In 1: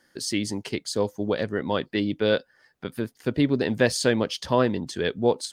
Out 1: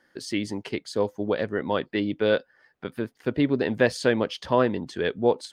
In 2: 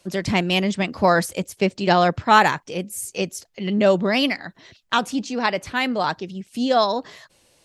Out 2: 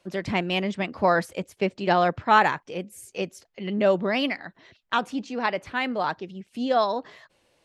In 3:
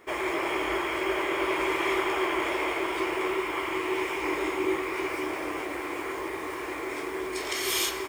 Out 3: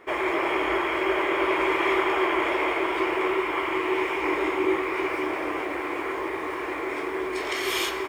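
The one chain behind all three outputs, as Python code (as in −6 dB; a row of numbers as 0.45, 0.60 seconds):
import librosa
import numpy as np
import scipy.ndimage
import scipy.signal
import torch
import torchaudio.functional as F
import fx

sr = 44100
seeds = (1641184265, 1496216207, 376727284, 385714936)

y = fx.bass_treble(x, sr, bass_db=-4, treble_db=-11)
y = y * 10.0 ** (-26 / 20.0) / np.sqrt(np.mean(np.square(y)))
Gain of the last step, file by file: +1.0, −3.5, +4.5 decibels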